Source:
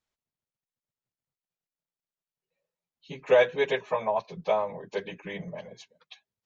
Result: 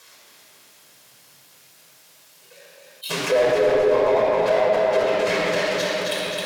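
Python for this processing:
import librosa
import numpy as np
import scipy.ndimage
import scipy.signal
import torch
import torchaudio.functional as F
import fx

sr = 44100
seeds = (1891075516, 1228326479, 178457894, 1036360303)

y = fx.halfwave_hold(x, sr)
y = scipy.signal.sosfilt(scipy.signal.bessel(2, 400.0, 'highpass', norm='mag', fs=sr, output='sos'), y)
y = fx.high_shelf(y, sr, hz=2300.0, db=9.0)
y = fx.env_lowpass_down(y, sr, base_hz=950.0, full_db=-22.5)
y = fx.leveller(y, sr, passes=1)
y = 10.0 ** (-15.0 / 20.0) * np.tanh(y / 10.0 ** (-15.0 / 20.0))
y = fx.echo_feedback(y, sr, ms=265, feedback_pct=55, wet_db=-5)
y = fx.room_shoebox(y, sr, seeds[0], volume_m3=3600.0, walls='mixed', distance_m=5.3)
y = fx.env_flatten(y, sr, amount_pct=50)
y = F.gain(torch.from_numpy(y), -5.0).numpy()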